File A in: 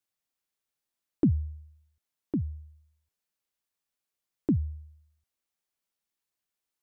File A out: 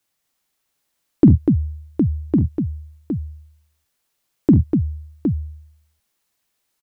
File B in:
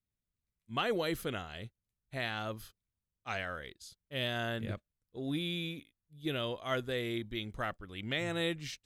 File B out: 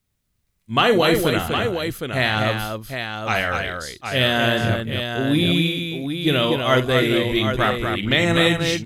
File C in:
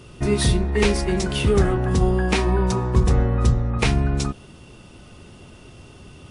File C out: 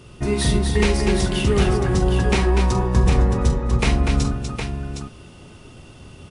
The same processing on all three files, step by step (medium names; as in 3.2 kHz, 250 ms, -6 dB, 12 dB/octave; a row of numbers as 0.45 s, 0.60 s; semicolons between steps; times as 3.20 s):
multi-tap echo 46/47/71/245/763 ms -13.5/-10.5/-18/-5.5/-7 dB; normalise loudness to -20 LUFS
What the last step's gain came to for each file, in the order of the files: +12.5 dB, +15.5 dB, -1.0 dB